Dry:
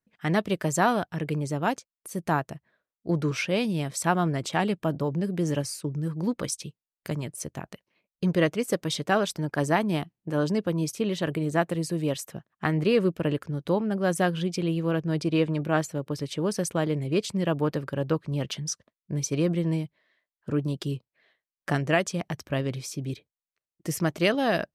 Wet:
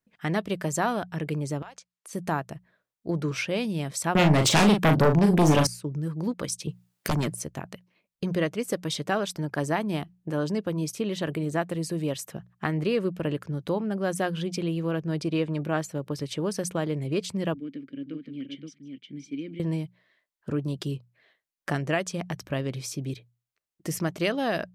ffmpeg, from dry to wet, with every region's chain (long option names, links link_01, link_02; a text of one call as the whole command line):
ffmpeg -i in.wav -filter_complex "[0:a]asettb=1/sr,asplit=3[link_01][link_02][link_03];[link_01]atrim=end=1.624[link_04];[link_02]atrim=start=1.62:end=2.13,asetpts=PTS-STARTPTS,afade=type=in:duration=0.004:curve=qsin,afade=type=out:start_time=0.506:duration=0.004:curve=qsin,highpass=730,lowpass=7800,acompressor=threshold=-40dB:ratio=8:attack=3.2:release=140:knee=1:detection=peak[link_05];[link_03]atrim=start=2.126[link_06];[link_04][link_05]acrossfade=duration=0.004:curve1=hsin:curve2=qsin[link_07];[link_07][link_06]acrossfade=duration=0.004:curve1=qsin:curve2=hsin,asettb=1/sr,asplit=3[link_08][link_09][link_10];[link_08]atrim=end=4.154[link_11];[link_09]atrim=start=4.15:end=5.67,asetpts=PTS-STARTPTS,afade=type=in:duration=0.004:curve=qsin,afade=type=out:start_time=1.516:duration=0.004:curve=qsin,highpass=82,aeval=exprs='0.355*sin(PI/2*5.01*val(0)/0.355)':channel_layout=same,asplit=2[link_12][link_13];[link_13]adelay=39,volume=-6dB[link_14];[link_12][link_14]amix=inputs=2:normalize=0,atrim=end_sample=67032[link_15];[link_10]atrim=start=5.666[link_16];[link_11][link_15]acrossfade=duration=0.004:curve1=hsin:curve2=qsin[link_17];[link_17][link_16]acrossfade=duration=0.004:curve1=qsin:curve2=hsin,asettb=1/sr,asplit=3[link_18][link_19][link_20];[link_18]atrim=end=6.674[link_21];[link_19]atrim=start=6.67:end=7.35,asetpts=PTS-STARTPTS,afade=type=in:duration=0.004:curve=qsin,afade=type=out:start_time=0.676:duration=0.004:curve=qsin,highpass=150,aeval=exprs='0.141*sin(PI/2*3.16*val(0)/0.141)':channel_layout=same,adynamicequalizer=threshold=0.00562:dfrequency=2100:dqfactor=0.7:tfrequency=2100:tqfactor=0.7:attack=5:release=100:ratio=0.375:range=1.5:mode=cutabove:tftype=highshelf[link_22];[link_20]atrim=start=7.346[link_23];[link_21][link_22]acrossfade=duration=0.004:curve1=hsin:curve2=qsin[link_24];[link_24][link_23]acrossfade=duration=0.004:curve1=qsin:curve2=hsin,asettb=1/sr,asplit=3[link_25][link_26][link_27];[link_25]atrim=end=17.544[link_28];[link_26]atrim=start=17.54:end=19.6,asetpts=PTS-STARTPTS,afade=type=in:duration=0.004:curve=qsin,afade=type=out:start_time=2.056:duration=0.004:curve=qsin,asplit=3[link_29][link_30][link_31];[link_29]bandpass=frequency=270:width_type=q:width=8,volume=0dB[link_32];[link_30]bandpass=frequency=2290:width_type=q:width=8,volume=-6dB[link_33];[link_31]bandpass=frequency=3010:width_type=q:width=8,volume=-9dB[link_34];[link_32][link_33][link_34]amix=inputs=3:normalize=0,aecho=1:1:152|521:0.1|0.531,atrim=end_sample=90846[link_35];[link_27]atrim=start=19.596[link_36];[link_28][link_35]acrossfade=duration=0.004:curve1=hsin:curve2=qsin[link_37];[link_37][link_36]acrossfade=duration=0.004:curve1=qsin:curve2=hsin,bandreject=frequency=60:width_type=h:width=6,bandreject=frequency=120:width_type=h:width=6,bandreject=frequency=180:width_type=h:width=6,acompressor=threshold=-33dB:ratio=1.5,volume=2dB" out.wav